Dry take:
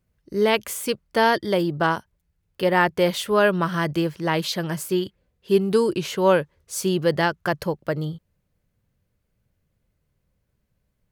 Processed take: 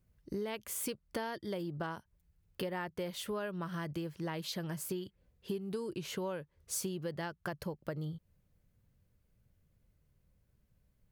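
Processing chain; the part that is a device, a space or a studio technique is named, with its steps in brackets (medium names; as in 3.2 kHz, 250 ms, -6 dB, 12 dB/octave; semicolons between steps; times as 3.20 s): ASMR close-microphone chain (bass shelf 200 Hz +6 dB; compression 10:1, threshold -31 dBFS, peak gain reduction 19.5 dB; treble shelf 10 kHz +4.5 dB); trim -4.5 dB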